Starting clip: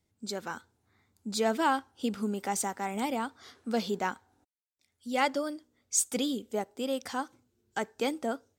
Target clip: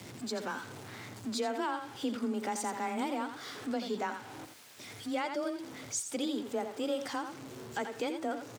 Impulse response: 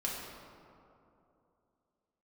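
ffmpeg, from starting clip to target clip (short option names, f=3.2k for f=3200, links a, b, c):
-filter_complex "[0:a]aeval=exprs='val(0)+0.5*0.01*sgn(val(0))':c=same,asplit=2[a][b];[b]acompressor=threshold=-40dB:ratio=6,volume=-2dB[c];[a][c]amix=inputs=2:normalize=0,highpass=93,highshelf=f=9k:g=-10.5,asplit=2[d][e];[e]aecho=0:1:84:0.376[f];[d][f]amix=inputs=2:normalize=0,afreqshift=20,alimiter=limit=-19.5dB:level=0:latency=1:release=235,volume=-4.5dB"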